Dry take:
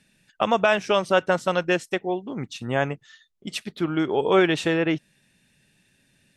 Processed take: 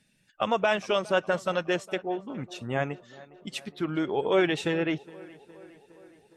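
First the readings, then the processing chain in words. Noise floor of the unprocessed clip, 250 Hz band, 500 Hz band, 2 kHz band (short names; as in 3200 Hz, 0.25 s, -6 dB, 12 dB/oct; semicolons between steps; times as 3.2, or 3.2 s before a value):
-66 dBFS, -5.0 dB, -4.5 dB, -5.0 dB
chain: bin magnitudes rounded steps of 15 dB; tape echo 0.413 s, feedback 71%, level -20 dB, low-pass 2700 Hz; gain -4.5 dB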